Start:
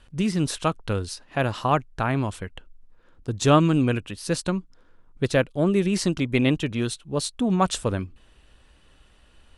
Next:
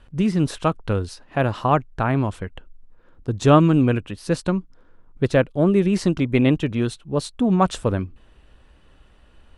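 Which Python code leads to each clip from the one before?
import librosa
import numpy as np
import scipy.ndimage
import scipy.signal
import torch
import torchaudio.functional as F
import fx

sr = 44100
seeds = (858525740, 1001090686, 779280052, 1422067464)

y = fx.high_shelf(x, sr, hz=2700.0, db=-10.5)
y = y * 10.0 ** (4.0 / 20.0)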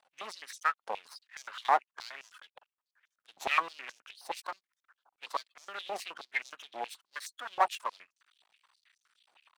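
y = fx.spec_quant(x, sr, step_db=30)
y = np.maximum(y, 0.0)
y = fx.filter_held_highpass(y, sr, hz=9.5, low_hz=790.0, high_hz=6000.0)
y = y * 10.0 ** (-7.5 / 20.0)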